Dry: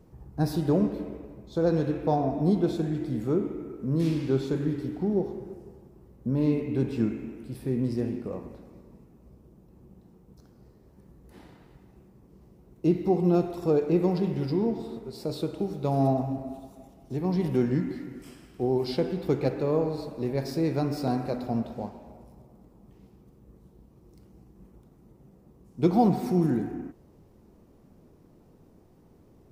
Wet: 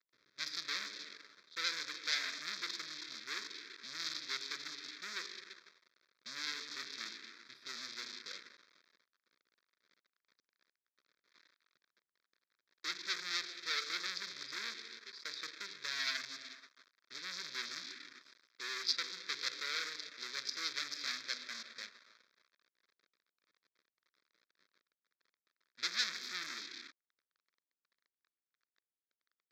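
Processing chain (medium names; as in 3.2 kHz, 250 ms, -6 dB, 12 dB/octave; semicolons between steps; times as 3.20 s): local Wiener filter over 41 samples; waveshaping leveller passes 5; ladder band-pass 4.6 kHz, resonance 30%; static phaser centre 2.9 kHz, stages 6; trim +12 dB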